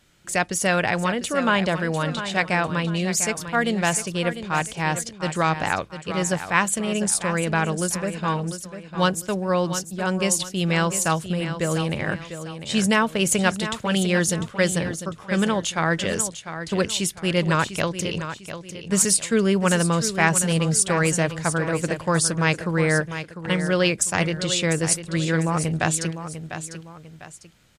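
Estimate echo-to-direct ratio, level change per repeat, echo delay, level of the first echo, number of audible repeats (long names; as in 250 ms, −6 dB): −10.0 dB, −8.5 dB, 699 ms, −10.5 dB, 2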